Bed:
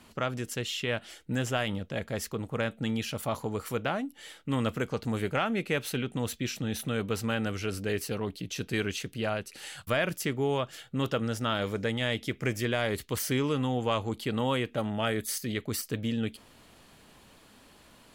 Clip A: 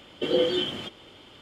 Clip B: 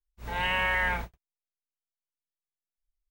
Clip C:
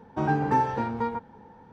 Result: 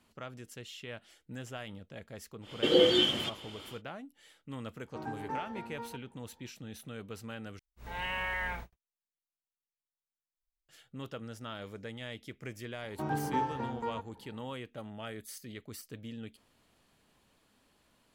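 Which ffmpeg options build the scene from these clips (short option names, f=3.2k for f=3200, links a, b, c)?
-filter_complex "[3:a]asplit=2[a][b];[0:a]volume=-13dB[c];[1:a]highshelf=f=2.7k:g=5.5[d];[a]equalizer=f=130:w=4.4:g=-15[e];[c]asplit=2[f][g];[f]atrim=end=7.594[h];[2:a]atrim=end=3.1,asetpts=PTS-STARTPTS,volume=-8dB[i];[g]atrim=start=10.686[j];[d]atrim=end=1.41,asetpts=PTS-STARTPTS,volume=-0.5dB,afade=t=in:d=0.1,afade=t=out:st=1.31:d=0.1,adelay=2410[k];[e]atrim=end=1.72,asetpts=PTS-STARTPTS,volume=-15dB,afade=t=in:d=0.004:c=hsin,afade=t=out:st=1.716:d=0.004:c=hsin,adelay=4780[l];[b]atrim=end=1.72,asetpts=PTS-STARTPTS,volume=-9dB,afade=t=in:d=0.004:c=hsin,afade=t=out:st=1.716:d=0.004:c=hsin,adelay=12820[m];[h][i]acrossfade=d=0.004:c1=hsin:c2=hsin[n];[n][j]acrossfade=d=0.004:c1=hsin:c2=hsin[o];[o][k][l][m]amix=inputs=4:normalize=0"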